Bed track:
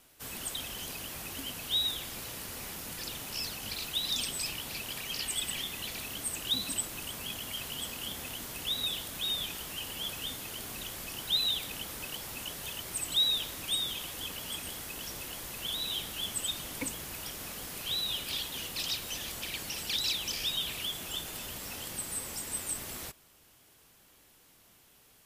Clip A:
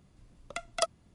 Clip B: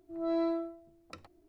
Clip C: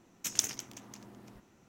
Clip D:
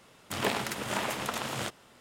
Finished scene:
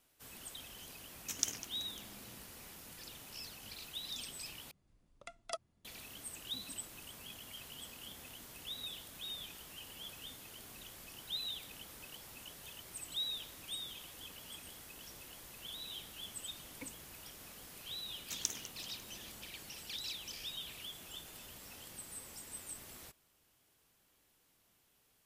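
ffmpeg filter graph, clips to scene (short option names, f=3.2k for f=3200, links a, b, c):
-filter_complex "[3:a]asplit=2[a][b];[0:a]volume=-11.5dB[c];[1:a]bandreject=f=60:t=h:w=6,bandreject=f=120:t=h:w=6,bandreject=f=180:t=h:w=6,bandreject=f=240:t=h:w=6,bandreject=f=300:t=h:w=6[d];[c]asplit=2[e][f];[e]atrim=end=4.714[g];[d]atrim=end=1.14,asetpts=PTS-STARTPTS,volume=-12.5dB[h];[f]atrim=start=5.846[i];[a]atrim=end=1.68,asetpts=PTS-STARTPTS,volume=-5.5dB,afade=t=in:d=0.004:c=hsin,afade=t=out:st=1.676:d=0.004:c=hsin,adelay=1040[j];[b]atrim=end=1.68,asetpts=PTS-STARTPTS,volume=-8dB,afade=t=in:d=0.004:c=hsin,afade=t=out:st=1.676:d=0.004:c=hsin,adelay=18060[k];[g][h]acrossfade=d=0.004:c1=hsin:c2=hsin[l];[l][i]acrossfade=d=0.004:c1=hsin:c2=hsin[m];[m][j][k]amix=inputs=3:normalize=0"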